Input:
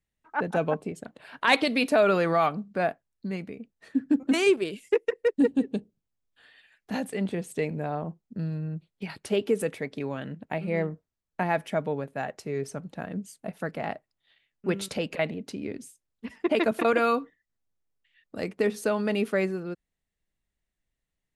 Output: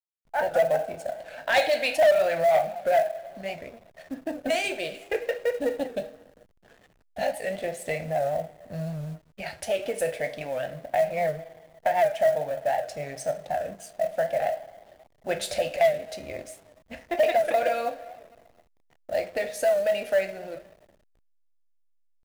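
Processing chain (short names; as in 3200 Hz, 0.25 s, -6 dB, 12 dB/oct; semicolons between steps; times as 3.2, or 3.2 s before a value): EQ curve 150 Hz 0 dB, 240 Hz -18 dB, 430 Hz -17 dB, 640 Hz +10 dB, 1100 Hz -24 dB, 1600 Hz -6 dB, 2600 Hz -8 dB; harmonic-percussive split percussive +6 dB; bell 130 Hz -11.5 dB 1.5 oct; in parallel at +1 dB: compressor 8:1, threshold -33 dBFS, peak gain reduction 22 dB; on the sum: two-slope reverb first 0.39 s, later 2.5 s, from -18 dB, DRR 4 dB; soft clip -14 dBFS, distortion -12 dB; tempo 0.96×; companded quantiser 6-bit; backlash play -43.5 dBFS; record warp 78 rpm, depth 100 cents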